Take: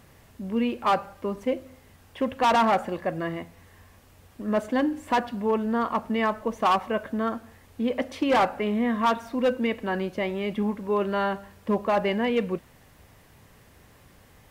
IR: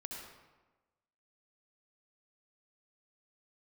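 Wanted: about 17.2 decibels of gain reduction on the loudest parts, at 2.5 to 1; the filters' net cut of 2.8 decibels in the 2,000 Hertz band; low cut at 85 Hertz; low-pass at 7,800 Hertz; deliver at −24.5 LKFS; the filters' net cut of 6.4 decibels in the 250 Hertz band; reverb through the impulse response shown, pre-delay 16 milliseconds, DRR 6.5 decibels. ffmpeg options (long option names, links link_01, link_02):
-filter_complex "[0:a]highpass=85,lowpass=7800,equalizer=frequency=250:width_type=o:gain=-7.5,equalizer=frequency=2000:width_type=o:gain=-3.5,acompressor=threshold=-47dB:ratio=2.5,asplit=2[link_01][link_02];[1:a]atrim=start_sample=2205,adelay=16[link_03];[link_02][link_03]afir=irnorm=-1:irlink=0,volume=-4.5dB[link_04];[link_01][link_04]amix=inputs=2:normalize=0,volume=18.5dB"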